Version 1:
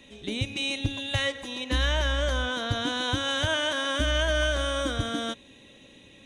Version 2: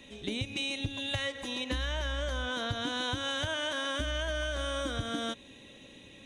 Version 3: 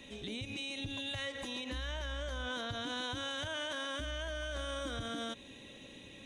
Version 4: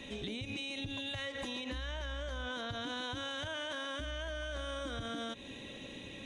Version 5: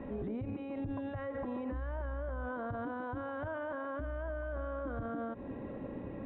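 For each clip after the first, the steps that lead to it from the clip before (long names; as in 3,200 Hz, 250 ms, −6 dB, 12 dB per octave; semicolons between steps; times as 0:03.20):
downward compressor, threshold −30 dBFS, peak gain reduction 9.5 dB
brickwall limiter −31 dBFS, peak gain reduction 11 dB
high-shelf EQ 7,800 Hz −8 dB; downward compressor, threshold −42 dBFS, peak gain reduction 6.5 dB; level +5.5 dB
low-pass filter 1,300 Hz 24 dB per octave; brickwall limiter −38 dBFS, peak gain reduction 6.5 dB; level +7 dB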